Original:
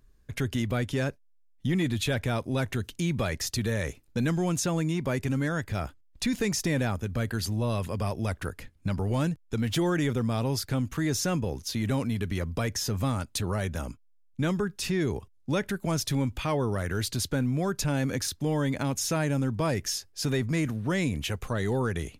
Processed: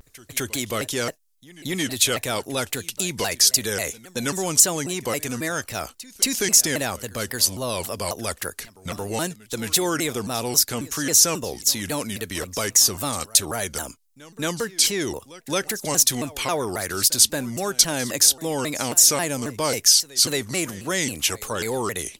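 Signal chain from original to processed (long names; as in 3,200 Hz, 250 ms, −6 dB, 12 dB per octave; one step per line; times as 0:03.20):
bass and treble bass −13 dB, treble +14 dB
backwards echo 223 ms −19.5 dB
pitch modulation by a square or saw wave saw down 3.7 Hz, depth 250 cents
level +5 dB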